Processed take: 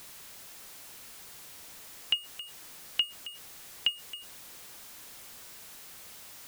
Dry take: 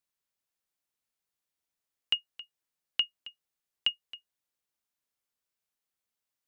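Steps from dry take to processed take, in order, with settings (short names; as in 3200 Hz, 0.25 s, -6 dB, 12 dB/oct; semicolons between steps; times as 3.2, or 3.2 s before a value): zero-crossing step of -41 dBFS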